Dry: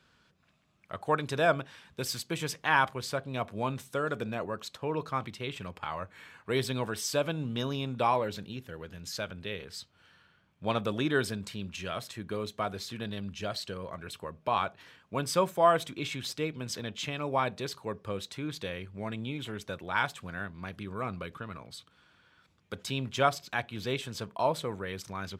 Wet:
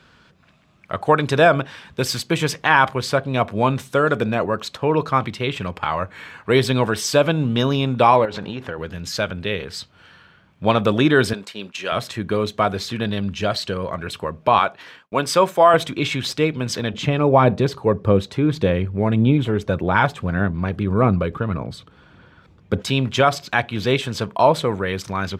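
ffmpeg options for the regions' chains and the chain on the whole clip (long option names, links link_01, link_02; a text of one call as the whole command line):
ffmpeg -i in.wav -filter_complex "[0:a]asettb=1/sr,asplit=3[link_01][link_02][link_03];[link_01]atrim=end=8.254[link_04];[link_02]atrim=start=8.25:end=8.78,asetpts=PTS-STARTPTS,afade=type=in:duration=0.004:curve=qsin,afade=type=out:start_time=0.526:duration=0.004:curve=qsin,lowpass=8800,equalizer=frequency=920:width=0.55:gain=13,acompressor=threshold=-37dB:ratio=10:attack=3.2:release=140:knee=1:detection=peak[link_05];[link_03]atrim=start=8.776[link_06];[link_04][link_05]acrossfade=duration=0.004:curve1=hsin:curve2=qsin[link_07];[link_07][link_06]acrossfade=duration=0.004:curve1=qsin:curve2=hsin,asettb=1/sr,asplit=3[link_08][link_09][link_10];[link_08]atrim=end=11.334[link_11];[link_09]atrim=start=11.33:end=11.92,asetpts=PTS-STARTPTS,afade=type=in:duration=0.004:curve=qsin,afade=type=out:start_time=0.586:duration=0.004:curve=qsin,agate=range=-33dB:threshold=-39dB:ratio=3:release=100:detection=peak,highpass=370[link_12];[link_10]atrim=start=11.916[link_13];[link_11][link_12]acrossfade=duration=0.004:curve1=hsin:curve2=qsin[link_14];[link_14][link_13]acrossfade=duration=0.004:curve1=qsin:curve2=hsin,asettb=1/sr,asplit=3[link_15][link_16][link_17];[link_15]atrim=end=14.594[link_18];[link_16]atrim=start=14.59:end=15.74,asetpts=PTS-STARTPTS,afade=type=in:duration=0.004:curve=qsin,afade=type=out:start_time=1.146:duration=0.004:curve=qsin,highpass=frequency=330:poles=1,agate=range=-33dB:threshold=-58dB:ratio=3:release=100:detection=peak[link_19];[link_17]atrim=start=15.736[link_20];[link_18][link_19]acrossfade=duration=0.004:curve1=hsin:curve2=qsin[link_21];[link_21][link_20]acrossfade=duration=0.004:curve1=qsin:curve2=hsin,asettb=1/sr,asplit=3[link_22][link_23][link_24];[link_22]atrim=end=16.934[link_25];[link_23]atrim=start=16.93:end=22.82,asetpts=PTS-STARTPTS,afade=type=in:duration=0.004:curve=qsin,afade=type=out:start_time=5.886:duration=0.004:curve=qsin,tiltshelf=frequency=930:gain=6,aphaser=in_gain=1:out_gain=1:delay=2.5:decay=0.25:speed=1.7:type=sinusoidal[link_26];[link_24]atrim=start=22.816[link_27];[link_25][link_26]acrossfade=duration=0.004:curve1=hsin:curve2=qsin[link_28];[link_28][link_27]acrossfade=duration=0.004:curve1=qsin:curve2=hsin,highshelf=frequency=6100:gain=-9,alimiter=level_in=16dB:limit=-1dB:release=50:level=0:latency=1,volume=-2dB" out.wav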